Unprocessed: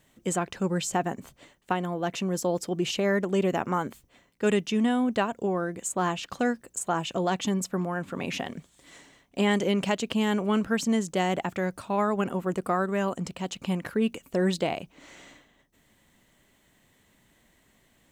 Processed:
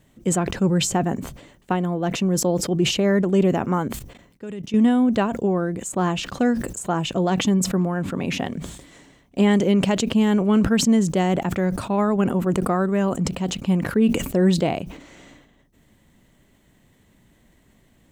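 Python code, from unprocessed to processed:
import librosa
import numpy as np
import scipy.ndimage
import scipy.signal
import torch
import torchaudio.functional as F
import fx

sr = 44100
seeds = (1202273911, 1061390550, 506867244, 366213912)

y = fx.level_steps(x, sr, step_db=19, at=(3.88, 4.74))
y = fx.low_shelf(y, sr, hz=450.0, db=10.0)
y = fx.sustainer(y, sr, db_per_s=72.0)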